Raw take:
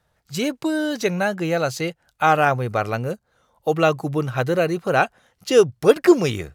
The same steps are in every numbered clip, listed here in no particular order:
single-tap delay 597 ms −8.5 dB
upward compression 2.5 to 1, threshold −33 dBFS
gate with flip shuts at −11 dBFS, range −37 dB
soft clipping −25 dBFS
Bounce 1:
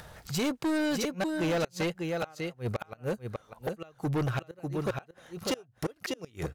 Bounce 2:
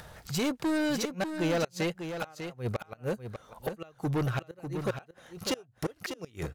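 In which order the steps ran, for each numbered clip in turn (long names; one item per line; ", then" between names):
gate with flip, then single-tap delay, then upward compression, then soft clipping
gate with flip, then upward compression, then soft clipping, then single-tap delay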